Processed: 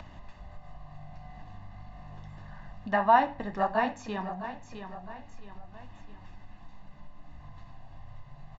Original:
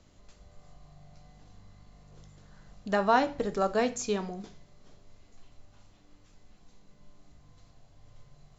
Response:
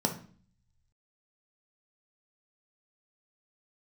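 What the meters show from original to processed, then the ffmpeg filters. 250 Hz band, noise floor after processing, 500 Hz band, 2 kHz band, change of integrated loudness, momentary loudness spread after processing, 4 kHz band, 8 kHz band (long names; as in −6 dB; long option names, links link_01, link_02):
−2.0 dB, −50 dBFS, −2.0 dB, +2.0 dB, 0.0 dB, 25 LU, −4.5 dB, can't be measured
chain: -filter_complex "[0:a]asplit=2[link_01][link_02];[link_02]aecho=0:1:662|1324|1986:0.251|0.0804|0.0257[link_03];[link_01][link_03]amix=inputs=2:normalize=0,flanger=delay=1.3:depth=8.3:regen=-63:speed=1.6:shape=sinusoidal,lowpass=2200,acrossover=split=550[link_04][link_05];[link_05]acontrast=47[link_06];[link_04][link_06]amix=inputs=2:normalize=0,aecho=1:1:1.1:0.68,acompressor=mode=upward:threshold=-34dB:ratio=2.5"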